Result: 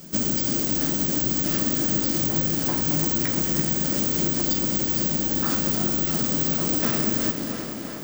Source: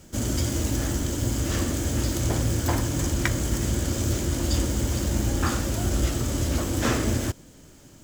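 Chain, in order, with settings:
brickwall limiter −17.5 dBFS, peak gain reduction 9 dB
bad sample-rate conversion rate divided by 2×, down none, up zero stuff
parametric band 4,900 Hz +6 dB 0.43 octaves
tape delay 340 ms, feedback 76%, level −9 dB, low-pass 4,800 Hz
downward compressor, threshold −21 dBFS, peak gain reduction 4.5 dB
low shelf with overshoot 120 Hz −9.5 dB, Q 3
feedback echo at a low word length 215 ms, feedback 80%, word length 7 bits, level −11 dB
level +3 dB

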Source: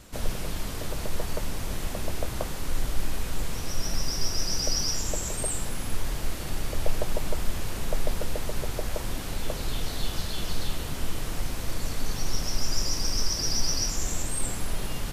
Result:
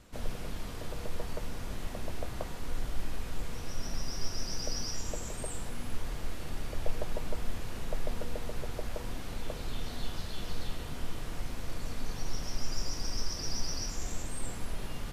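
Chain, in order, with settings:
high-shelf EQ 5,100 Hz −7.5 dB
tuned comb filter 240 Hz, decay 1 s, mix 70%
level +3.5 dB

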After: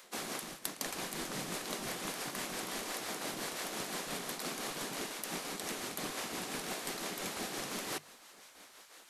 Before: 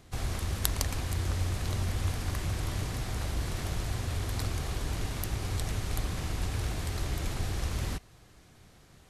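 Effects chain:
gate on every frequency bin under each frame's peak −15 dB weak
high-shelf EQ 10,000 Hz +5 dB
mains-hum notches 50/100/150 Hz
reversed playback
downward compressor 8 to 1, threshold −42 dBFS, peak gain reduction 20 dB
reversed playback
amplitude tremolo 5.8 Hz, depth 39%
level +7.5 dB

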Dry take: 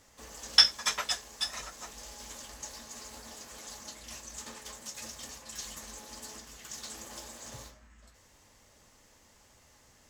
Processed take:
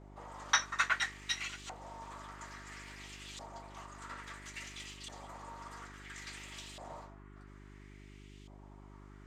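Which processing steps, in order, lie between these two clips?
notch filter 5,000 Hz, Q 25
speed change +9%
auto-filter band-pass saw up 0.59 Hz 700–3,300 Hz
hum with harmonics 50 Hz, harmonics 8, −62 dBFS −4 dB per octave
level +8 dB

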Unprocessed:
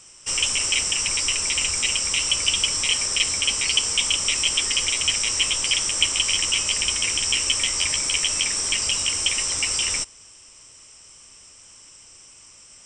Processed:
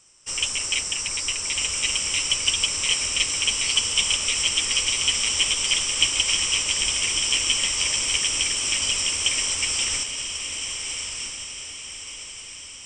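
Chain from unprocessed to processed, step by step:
on a send: feedback delay with all-pass diffusion 1,333 ms, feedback 60%, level −4 dB
on the sum: expander for the loud parts 1.5 to 1, over −32 dBFS

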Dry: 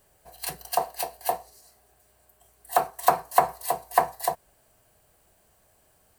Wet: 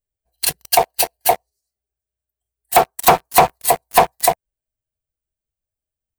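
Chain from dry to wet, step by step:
spectral dynamics exaggerated over time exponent 1.5
leveller curve on the samples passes 5

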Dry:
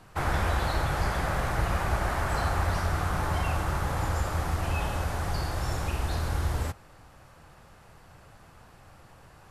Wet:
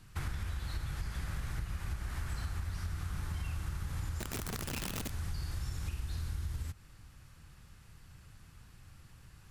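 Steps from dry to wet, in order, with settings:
guitar amp tone stack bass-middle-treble 6-0-2
downward compressor 16 to 1, threshold −46 dBFS, peak gain reduction 12.5 dB
0:04.19–0:05.11: wrap-around overflow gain 46 dB
level +13 dB

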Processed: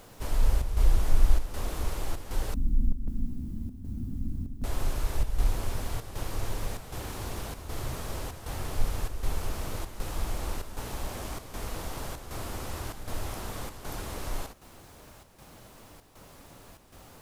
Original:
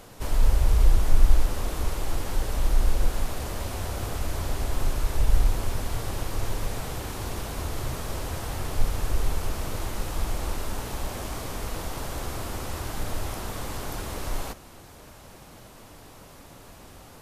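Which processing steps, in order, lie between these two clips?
0:02.54–0:04.64: drawn EQ curve 120 Hz 0 dB, 250 Hz +11 dB, 480 Hz −29 dB
background noise blue −63 dBFS
square-wave tremolo 1.3 Hz, depth 60%, duty 80%
level −3.5 dB

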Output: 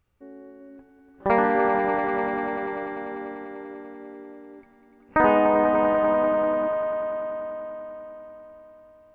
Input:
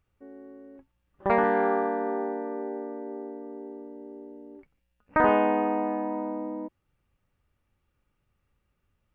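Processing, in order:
echo that builds up and dies away 98 ms, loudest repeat 5, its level −10 dB
level +2.5 dB

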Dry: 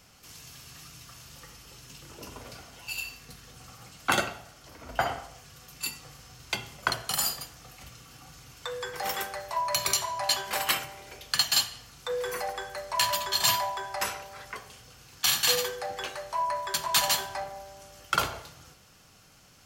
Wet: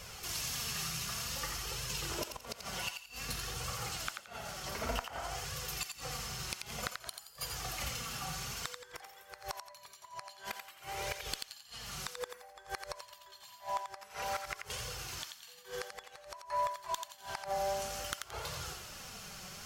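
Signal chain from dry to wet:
parametric band 280 Hz −12.5 dB 0.29 octaves
downward compressor 8 to 1, threshold −39 dBFS, peak gain reduction 19.5 dB
flanger 0.54 Hz, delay 1.7 ms, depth 3.8 ms, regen +34%
gate with flip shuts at −37 dBFS, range −24 dB
on a send: feedback echo with a high-pass in the loop 87 ms, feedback 32%, high-pass 880 Hz, level −5.5 dB
on the sum: asymmetric clip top −39.5 dBFS
level +13 dB

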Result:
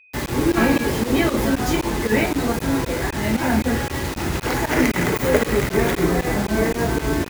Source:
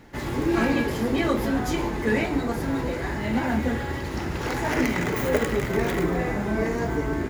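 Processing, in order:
fake sidechain pumping 116 BPM, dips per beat 2, −21 dB, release 91 ms
bit reduction 6 bits
steady tone 2,500 Hz −55 dBFS
level +5.5 dB

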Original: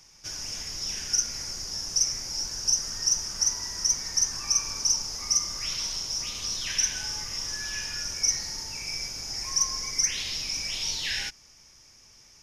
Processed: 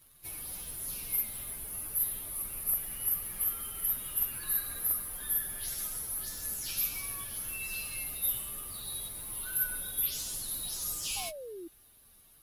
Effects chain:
partials spread apart or drawn together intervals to 123%
sound drawn into the spectrogram fall, 0:11.16–0:11.68, 320–830 Hz −43 dBFS
asymmetric clip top −22 dBFS

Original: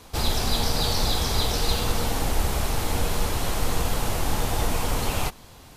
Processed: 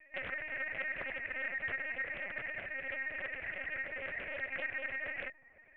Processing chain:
three-way crossover with the lows and the highs turned down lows −17 dB, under 320 Hz, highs −24 dB, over 3,000 Hz
spring reverb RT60 2.2 s, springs 55 ms, chirp 60 ms, DRR 17 dB
ring modulation 1,400 Hz
formant resonators in series e
on a send: delay with a band-pass on its return 83 ms, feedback 81%, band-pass 750 Hz, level −18 dB
on the sum: reverb reduction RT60 0.64 s
parametric band 1,900 Hz +15 dB 2 octaves
linear-prediction vocoder at 8 kHz pitch kept
tuned comb filter 340 Hz, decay 0.6 s, mix 30%
highs frequency-modulated by the lows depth 0.47 ms
level −1 dB

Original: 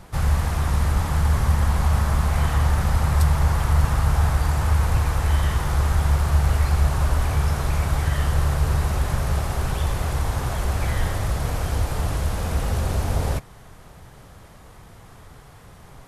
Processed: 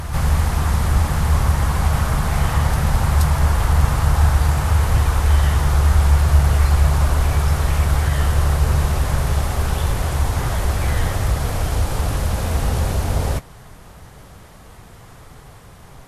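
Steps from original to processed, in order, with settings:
backwards echo 476 ms −7.5 dB
level +3 dB
Ogg Vorbis 48 kbit/s 44,100 Hz

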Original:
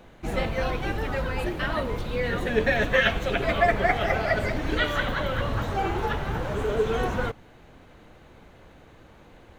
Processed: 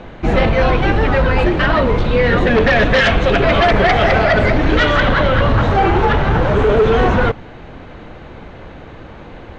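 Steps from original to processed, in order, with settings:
in parallel at −2 dB: brickwall limiter −18.5 dBFS, peak gain reduction 10 dB
0:03.52–0:04.24: on the sum: high-shelf EQ 7,800 Hz +9.5 dB
sine wavefolder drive 9 dB, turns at −5.5 dBFS
high-frequency loss of the air 160 metres
level −1.5 dB

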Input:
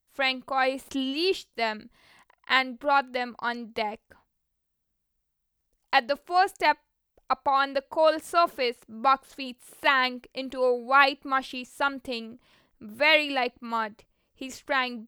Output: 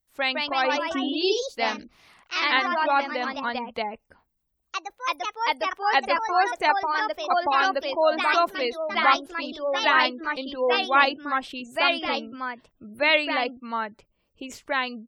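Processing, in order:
delay with pitch and tempo change per echo 182 ms, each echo +2 semitones, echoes 3
gate on every frequency bin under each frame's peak −30 dB strong

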